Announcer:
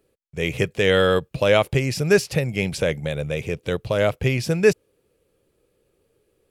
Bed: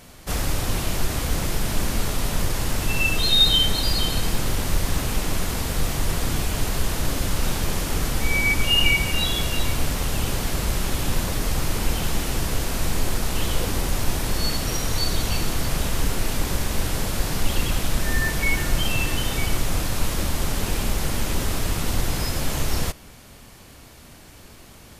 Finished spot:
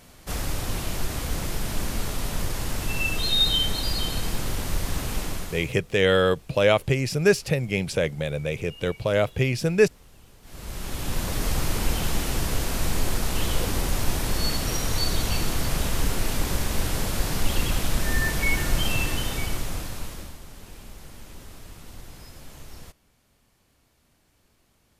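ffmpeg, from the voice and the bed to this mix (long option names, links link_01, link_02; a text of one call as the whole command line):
ffmpeg -i stem1.wav -i stem2.wav -filter_complex "[0:a]adelay=5150,volume=-2dB[link_01];[1:a]volume=22dB,afade=type=out:start_time=5.21:duration=0.56:silence=0.0668344,afade=type=in:start_time=10.42:duration=1.04:silence=0.0473151,afade=type=out:start_time=18.93:duration=1.47:silence=0.125893[link_02];[link_01][link_02]amix=inputs=2:normalize=0" out.wav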